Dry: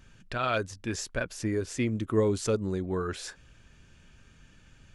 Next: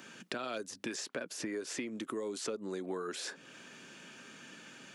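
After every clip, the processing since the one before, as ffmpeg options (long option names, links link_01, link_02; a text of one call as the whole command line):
ffmpeg -i in.wav -filter_complex "[0:a]acompressor=threshold=-34dB:ratio=4,highpass=frequency=220:width=0.5412,highpass=frequency=220:width=1.3066,acrossover=split=500|4600[link_01][link_02][link_03];[link_01]acompressor=threshold=-51dB:ratio=4[link_04];[link_02]acompressor=threshold=-53dB:ratio=4[link_05];[link_03]acompressor=threshold=-57dB:ratio=4[link_06];[link_04][link_05][link_06]amix=inputs=3:normalize=0,volume=10dB" out.wav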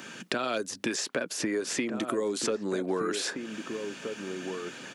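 ffmpeg -i in.wav -filter_complex "[0:a]asplit=2[link_01][link_02];[link_02]adelay=1574,volume=-6dB,highshelf=frequency=4000:gain=-35.4[link_03];[link_01][link_03]amix=inputs=2:normalize=0,volume=8.5dB" out.wav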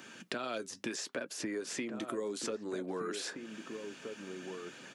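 ffmpeg -i in.wav -af "flanger=delay=2.4:depth=4.1:regen=-76:speed=0.75:shape=triangular,volume=-3.5dB" out.wav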